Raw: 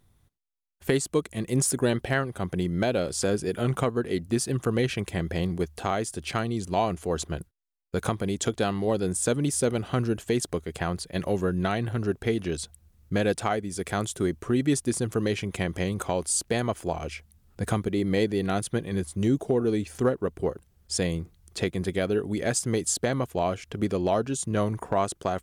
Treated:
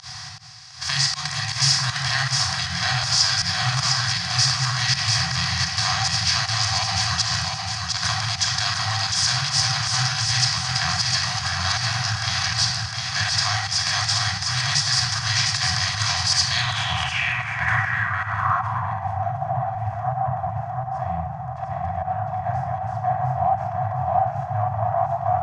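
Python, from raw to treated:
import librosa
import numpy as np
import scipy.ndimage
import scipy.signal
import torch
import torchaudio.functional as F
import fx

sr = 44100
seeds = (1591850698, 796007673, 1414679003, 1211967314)

p1 = fx.bin_compress(x, sr, power=0.4)
p2 = np.clip(p1, -10.0 ** (-19.0 / 20.0), 10.0 ** (-19.0 / 20.0))
p3 = p1 + (p2 * librosa.db_to_amplitude(-4.5))
p4 = scipy.signal.sosfilt(scipy.signal.butter(2, 110.0, 'highpass', fs=sr, output='sos'), p3)
p5 = fx.peak_eq(p4, sr, hz=5900.0, db=9.5, octaves=0.38)
p6 = fx.room_shoebox(p5, sr, seeds[0], volume_m3=3700.0, walls='furnished', distance_m=5.5)
p7 = fx.volume_shaper(p6, sr, bpm=158, per_beat=1, depth_db=-24, release_ms=85.0, shape='fast start')
p8 = scipy.signal.sosfilt(scipy.signal.cheby2(4, 50, [240.0, 510.0], 'bandstop', fs=sr, output='sos'), p7)
p9 = fx.small_body(p8, sr, hz=(760.0, 1900.0), ring_ms=40, db=10)
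p10 = p9 + fx.echo_feedback(p9, sr, ms=706, feedback_pct=46, wet_db=-4.0, dry=0)
p11 = fx.filter_sweep_lowpass(p10, sr, from_hz=4700.0, to_hz=710.0, start_s=16.37, end_s=19.26, q=4.6)
p12 = fx.low_shelf(p11, sr, hz=380.0, db=-4.0)
y = p12 * librosa.db_to_amplitude(-8.5)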